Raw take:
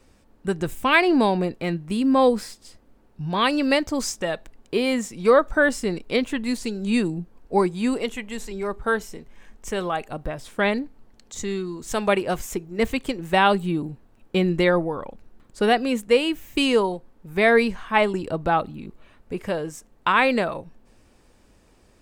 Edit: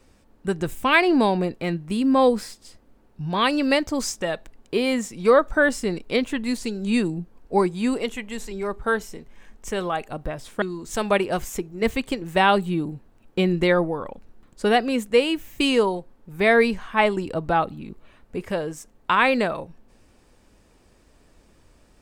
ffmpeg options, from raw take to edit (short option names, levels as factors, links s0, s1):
-filter_complex "[0:a]asplit=2[s0][s1];[s0]atrim=end=10.622[s2];[s1]atrim=start=11.588[s3];[s2][s3]acrossfade=d=0.004:c1=hsin:c2=hsin"